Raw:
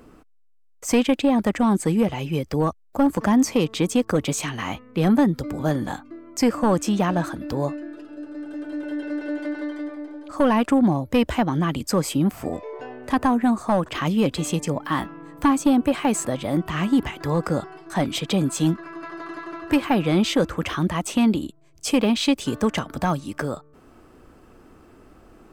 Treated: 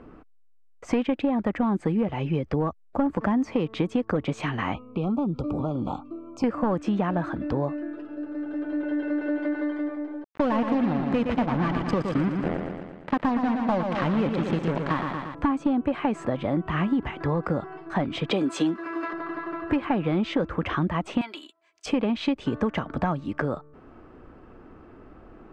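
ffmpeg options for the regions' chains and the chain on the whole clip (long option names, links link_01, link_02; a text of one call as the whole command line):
ffmpeg -i in.wav -filter_complex "[0:a]asettb=1/sr,asplit=3[link_01][link_02][link_03];[link_01]atrim=end=4.744[link_04];[link_02]atrim=start=4.74:end=6.44,asetpts=PTS-STARTPTS,afade=type=in:duration=0.004:curve=qsin,afade=type=out:start_time=1.696:duration=0.004:curve=qsin,acompressor=threshold=-25dB:ratio=4:attack=3.2:release=140:knee=1:detection=peak,asuperstop=centerf=1800:order=12:qfactor=1.9[link_05];[link_03]atrim=start=6.436[link_06];[link_04][link_05]acrossfade=duration=0.004:curve1=hsin:curve2=qsin[link_07];[link_07][link_06]acrossfade=duration=0.004:curve1=qsin:curve2=hsin,asettb=1/sr,asplit=3[link_08][link_09][link_10];[link_08]atrim=end=10.244[link_11];[link_09]atrim=start=10.24:end=15.35,asetpts=PTS-STARTPTS,afade=type=in:duration=0.004:curve=qsin,afade=type=out:start_time=5.106:duration=0.004:curve=qsin,acrusher=bits=3:mix=0:aa=0.5,aecho=1:1:116|232|348|464|580|696|812|928:0.447|0.264|0.155|0.0917|0.0541|0.0319|0.0188|0.0111,atrim=end_sample=225351[link_12];[link_10]atrim=start=15.346[link_13];[link_11][link_12]acrossfade=duration=0.004:curve1=hsin:curve2=qsin[link_14];[link_14][link_13]acrossfade=duration=0.004:curve1=qsin:curve2=hsin,asettb=1/sr,asplit=3[link_15][link_16][link_17];[link_15]atrim=end=18.314[link_18];[link_16]atrim=start=18.31:end=19.13,asetpts=PTS-STARTPTS,afade=type=in:duration=0.004:curve=qsin,afade=type=out:start_time=0.816:duration=0.004:curve=qsin,highpass=frequency=310:width_type=q:width=1.5,highshelf=frequency=2400:gain=11.5,acrusher=bits=9:dc=4:mix=0:aa=0.000001[link_19];[link_17]atrim=start=19.126[link_20];[link_18][link_19]acrossfade=duration=0.004:curve1=hsin:curve2=qsin[link_21];[link_21][link_20]acrossfade=duration=0.004:curve1=qsin:curve2=hsin,asettb=1/sr,asplit=3[link_22][link_23][link_24];[link_22]atrim=end=21.214[link_25];[link_23]atrim=start=21.21:end=21.86,asetpts=PTS-STARTPTS,afade=type=in:duration=0.004:curve=qsin,afade=type=out:start_time=0.646:duration=0.004:curve=qsin,highpass=1200,highshelf=frequency=4300:gain=10.5,aecho=1:1:3:0.66,atrim=end_sample=28665[link_26];[link_24]atrim=start=21.856[link_27];[link_25][link_26]acrossfade=duration=0.004:curve1=hsin:curve2=qsin[link_28];[link_28][link_27]acrossfade=duration=0.004:curve1=qsin:curve2=hsin,lowpass=2200,acompressor=threshold=-23dB:ratio=6,volume=2dB" out.wav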